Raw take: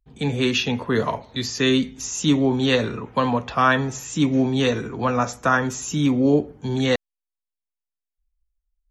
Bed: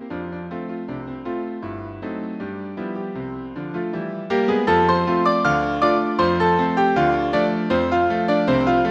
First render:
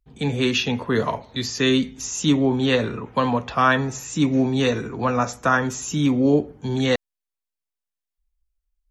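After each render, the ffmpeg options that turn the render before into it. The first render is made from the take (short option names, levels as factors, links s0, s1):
-filter_complex "[0:a]asettb=1/sr,asplit=3[s0][s1][s2];[s0]atrim=end=2.324[s3];[s1]atrim=start=2.32:end=3.06,asetpts=PTS-STARTPTS,afade=t=in:d=0.004:c=qsin,afade=t=out:st=0.736:d=0.004:c=qsin,equalizer=f=5400:t=o:w=1.1:g=-4.5[s4];[s2]atrim=start=3.056[s5];[s3][s4]acrossfade=d=0.004:c1=hsin:c2=qsin[s6];[s6][s5]acrossfade=d=0.004:c1=qsin:c2=hsin,asettb=1/sr,asplit=3[s7][s8][s9];[s7]atrim=end=3.774[s10];[s8]atrim=start=3.77:end=5.29,asetpts=PTS-STARTPTS,afade=t=in:d=0.004:c=qsin,afade=t=out:st=1.516:d=0.004:c=qsin,bandreject=f=3200:w=12[s11];[s9]atrim=start=5.286[s12];[s10][s11]acrossfade=d=0.004:c1=hsin:c2=qsin[s13];[s13][s12]acrossfade=d=0.004:c1=qsin:c2=hsin"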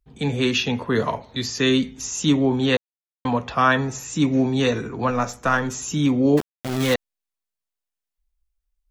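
-filter_complex "[0:a]asettb=1/sr,asplit=3[s0][s1][s2];[s0]atrim=end=5.104[s3];[s1]atrim=start=5.1:end=5.71,asetpts=PTS-STARTPTS,afade=t=in:d=0.004:c=qsin,afade=t=out:st=0.606:d=0.004:c=qsin,aeval=exprs='if(lt(val(0),0),0.708*val(0),val(0))':c=same[s4];[s2]atrim=start=5.706[s5];[s3][s4]acrossfade=d=0.004:c1=hsin:c2=qsin[s6];[s6][s5]acrossfade=d=0.004:c1=qsin:c2=hsin,asettb=1/sr,asplit=3[s7][s8][s9];[s7]atrim=end=6.374[s10];[s8]atrim=start=6.37:end=6.94,asetpts=PTS-STARTPTS,afade=t=in:d=0.004:c=qsin,afade=t=out:st=0.566:d=0.004:c=qsin,aeval=exprs='val(0)*gte(abs(val(0)),0.075)':c=same[s11];[s9]atrim=start=6.936[s12];[s10][s11]acrossfade=d=0.004:c1=hsin:c2=qsin[s13];[s13][s12]acrossfade=d=0.004:c1=qsin:c2=hsin,asplit=3[s14][s15][s16];[s14]atrim=end=2.77,asetpts=PTS-STARTPTS,afade=t=out:st=2.766:d=0.004:c=hsin[s17];[s15]atrim=start=2.77:end=3.25,asetpts=PTS-STARTPTS,volume=0[s18];[s16]atrim=start=3.25,asetpts=PTS-STARTPTS,afade=t=in:d=0.004:c=hsin[s19];[s17][s18][s19]concat=n=3:v=0:a=1"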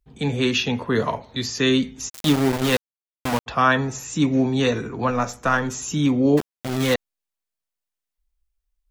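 -filter_complex "[0:a]asplit=3[s0][s1][s2];[s0]afade=t=out:st=2.08:d=0.02[s3];[s1]aeval=exprs='val(0)*gte(abs(val(0)),0.1)':c=same,afade=t=in:st=2.08:d=0.02,afade=t=out:st=3.46:d=0.02[s4];[s2]afade=t=in:st=3.46:d=0.02[s5];[s3][s4][s5]amix=inputs=3:normalize=0"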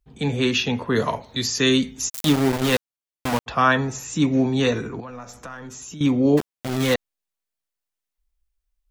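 -filter_complex "[0:a]asettb=1/sr,asplit=3[s0][s1][s2];[s0]atrim=end=0.964[s3];[s1]atrim=start=0.96:end=2.25,asetpts=PTS-STARTPTS,afade=t=in:d=0.004:c=qsin,afade=t=out:st=1.286:d=0.004:c=qsin,highshelf=f=6100:g=10[s4];[s2]atrim=start=2.246[s5];[s3][s4]acrossfade=d=0.004:c1=hsin:c2=qsin[s6];[s6][s5]acrossfade=d=0.004:c1=qsin:c2=hsin,asettb=1/sr,asplit=3[s7][s8][s9];[s7]atrim=end=5.004[s10];[s8]atrim=start=5:end=6.01,asetpts=PTS-STARTPTS,afade=t=in:d=0.004:c=qsin,afade=t=out:st=1.006:d=0.004:c=qsin,acompressor=threshold=0.0158:ratio=4:attack=3.2:release=140:knee=1:detection=peak[s11];[s9]atrim=start=6.006[s12];[s10][s11]acrossfade=d=0.004:c1=hsin:c2=qsin[s13];[s13][s12]acrossfade=d=0.004:c1=qsin:c2=hsin"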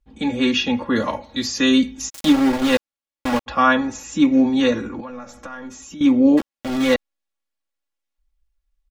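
-af "highshelf=f=7300:g=-11,aecho=1:1:3.6:0.87"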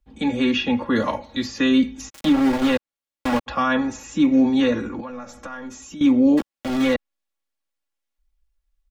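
-filter_complex "[0:a]acrossover=split=220|3300[s0][s1][s2];[s1]alimiter=limit=0.237:level=0:latency=1:release=57[s3];[s2]acompressor=threshold=0.0112:ratio=6[s4];[s0][s3][s4]amix=inputs=3:normalize=0"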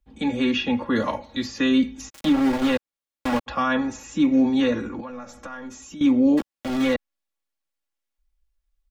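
-af "volume=0.794"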